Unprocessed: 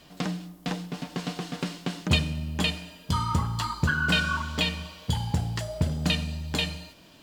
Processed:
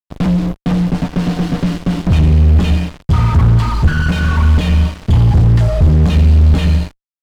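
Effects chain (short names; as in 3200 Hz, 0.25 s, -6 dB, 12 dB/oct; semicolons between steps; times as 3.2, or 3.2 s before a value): fuzz box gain 48 dB, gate -42 dBFS; RIAA curve playback; gain -6 dB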